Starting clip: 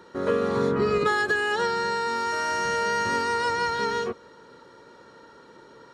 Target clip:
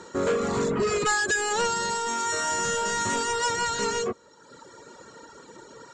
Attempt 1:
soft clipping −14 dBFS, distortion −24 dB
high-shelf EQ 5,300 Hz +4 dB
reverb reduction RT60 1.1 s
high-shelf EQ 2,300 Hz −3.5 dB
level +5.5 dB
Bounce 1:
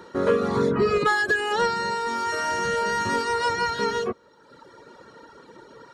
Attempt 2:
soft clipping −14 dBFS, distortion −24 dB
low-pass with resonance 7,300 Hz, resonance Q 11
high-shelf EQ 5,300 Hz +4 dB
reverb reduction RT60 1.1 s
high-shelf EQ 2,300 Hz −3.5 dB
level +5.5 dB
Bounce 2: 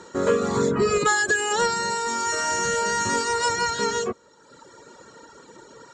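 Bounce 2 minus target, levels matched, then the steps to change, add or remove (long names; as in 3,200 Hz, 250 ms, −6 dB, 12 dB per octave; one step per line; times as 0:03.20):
soft clipping: distortion −13 dB
change: soft clipping −24 dBFS, distortion −11 dB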